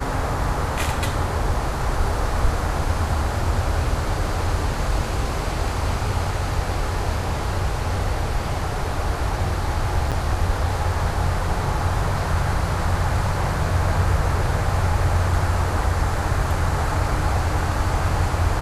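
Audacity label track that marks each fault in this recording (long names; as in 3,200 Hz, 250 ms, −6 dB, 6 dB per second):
10.110000	10.120000	drop-out 7.2 ms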